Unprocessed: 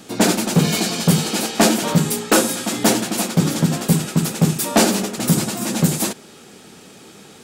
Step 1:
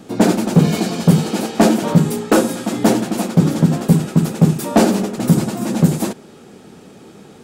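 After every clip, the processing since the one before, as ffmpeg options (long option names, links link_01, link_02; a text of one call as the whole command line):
ffmpeg -i in.wav -af "tiltshelf=frequency=1400:gain=6,volume=-1.5dB" out.wav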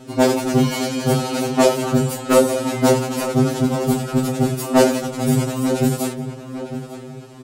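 ffmpeg -i in.wav -filter_complex "[0:a]asplit=2[link_01][link_02];[link_02]adelay=901,lowpass=frequency=2800:poles=1,volume=-11dB,asplit=2[link_03][link_04];[link_04]adelay=901,lowpass=frequency=2800:poles=1,volume=0.39,asplit=2[link_05][link_06];[link_06]adelay=901,lowpass=frequency=2800:poles=1,volume=0.39,asplit=2[link_07][link_08];[link_08]adelay=901,lowpass=frequency=2800:poles=1,volume=0.39[link_09];[link_01][link_03][link_05][link_07][link_09]amix=inputs=5:normalize=0,afftfilt=real='re*2.45*eq(mod(b,6),0)':imag='im*2.45*eq(mod(b,6),0)':win_size=2048:overlap=0.75,volume=2dB" out.wav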